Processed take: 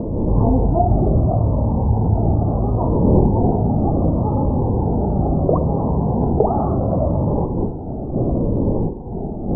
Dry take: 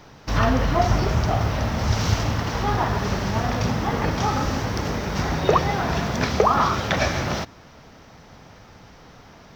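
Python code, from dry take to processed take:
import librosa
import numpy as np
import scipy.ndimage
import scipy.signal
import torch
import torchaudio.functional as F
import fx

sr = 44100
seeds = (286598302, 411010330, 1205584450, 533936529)

p1 = fx.dmg_wind(x, sr, seeds[0], corner_hz=360.0, level_db=-28.0)
p2 = scipy.signal.sosfilt(scipy.signal.butter(8, 900.0, 'lowpass', fs=sr, output='sos'), p1)
p3 = fx.over_compress(p2, sr, threshold_db=-29.0, ratio=-1.0)
p4 = p2 + (p3 * 10.0 ** (-2.0 / 20.0))
p5 = p4 + 10.0 ** (-17.0 / 20.0) * np.pad(p4, (int(977 * sr / 1000.0), 0))[:len(p4)]
p6 = fx.notch_cascade(p5, sr, direction='falling', hz=0.71)
y = p6 * 10.0 ** (3.5 / 20.0)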